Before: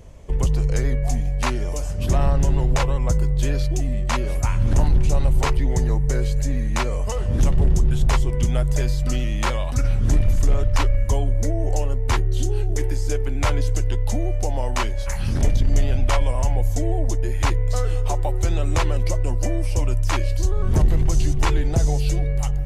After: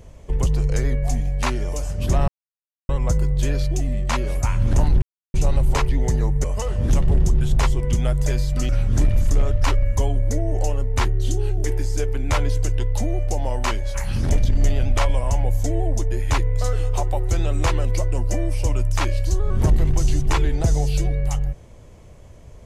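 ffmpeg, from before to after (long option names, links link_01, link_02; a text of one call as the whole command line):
ffmpeg -i in.wav -filter_complex "[0:a]asplit=6[link_01][link_02][link_03][link_04][link_05][link_06];[link_01]atrim=end=2.28,asetpts=PTS-STARTPTS,afade=type=out:start_time=2.276:duration=0.004:curve=hsin[link_07];[link_02]atrim=start=2.28:end=2.89,asetpts=PTS-STARTPTS,volume=0[link_08];[link_03]atrim=start=2.89:end=5.02,asetpts=PTS-STARTPTS,afade=type=in:duration=0.004:curve=hsin,afade=type=out:start_time=2.126:duration=0.004:curve=hsin,apad=pad_dur=0.32[link_09];[link_04]atrim=start=5.02:end=6.122,asetpts=PTS-STARTPTS,afade=type=in:duration=0.004:curve=hsin[link_10];[link_05]atrim=start=6.938:end=9.192[link_11];[link_06]atrim=start=9.808[link_12];[link_07][link_08][link_09][link_10]concat=n=4:v=0:a=1[link_13];[link_13][link_11]acrossfade=duration=0.004:curve1=hsin:curve2=hsin[link_14];[link_14][link_12]acrossfade=duration=0.004:curve1=hsin:curve2=hsin" out.wav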